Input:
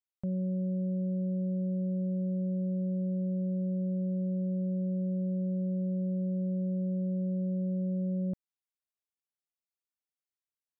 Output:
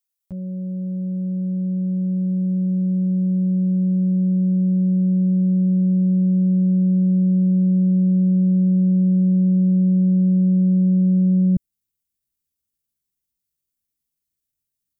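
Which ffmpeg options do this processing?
ffmpeg -i in.wav -af "asubboost=boost=10:cutoff=250,atempo=0.72,crystalizer=i=3:c=0" out.wav

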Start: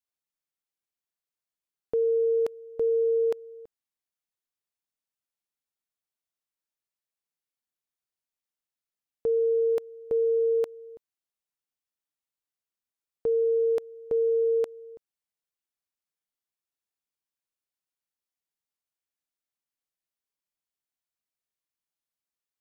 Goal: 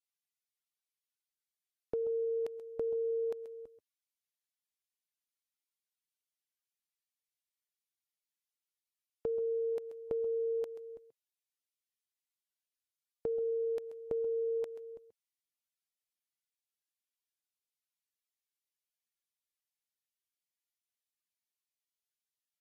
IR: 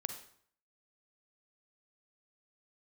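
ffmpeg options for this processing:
-af "acompressor=threshold=-30dB:ratio=6,aecho=1:1:133:0.224,volume=-3dB" -ar 48000 -c:a libvorbis -b:a 48k

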